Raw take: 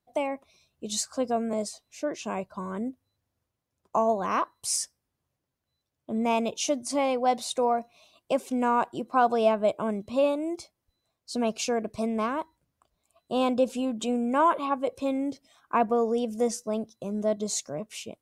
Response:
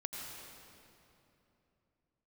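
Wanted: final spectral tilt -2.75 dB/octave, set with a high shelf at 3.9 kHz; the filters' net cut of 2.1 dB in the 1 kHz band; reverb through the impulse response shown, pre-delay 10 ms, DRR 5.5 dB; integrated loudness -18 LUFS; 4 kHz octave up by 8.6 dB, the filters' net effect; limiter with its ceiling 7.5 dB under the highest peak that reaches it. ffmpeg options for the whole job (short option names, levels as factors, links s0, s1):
-filter_complex "[0:a]equalizer=f=1000:t=o:g=-3.5,highshelf=f=3900:g=7,equalizer=f=4000:t=o:g=6.5,alimiter=limit=0.15:level=0:latency=1,asplit=2[s0][s1];[1:a]atrim=start_sample=2205,adelay=10[s2];[s1][s2]afir=irnorm=-1:irlink=0,volume=0.501[s3];[s0][s3]amix=inputs=2:normalize=0,volume=3.16"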